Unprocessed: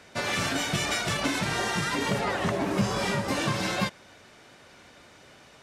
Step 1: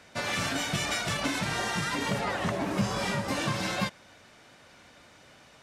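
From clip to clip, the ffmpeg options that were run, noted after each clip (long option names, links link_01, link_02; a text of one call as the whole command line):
ffmpeg -i in.wav -af "equalizer=frequency=390:width=4:gain=-4.5,volume=-2dB" out.wav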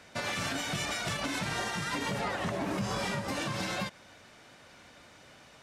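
ffmpeg -i in.wav -af "alimiter=limit=-23.5dB:level=0:latency=1:release=128" out.wav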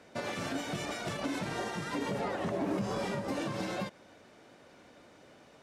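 ffmpeg -i in.wav -af "equalizer=frequency=370:width_type=o:width=2.4:gain=11,volume=-7.5dB" out.wav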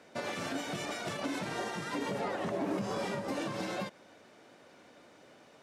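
ffmpeg -i in.wav -af "highpass=frequency=160:poles=1" out.wav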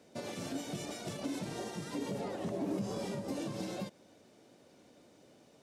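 ffmpeg -i in.wav -af "equalizer=frequency=1500:width_type=o:width=2.4:gain=-12.5,volume=1dB" out.wav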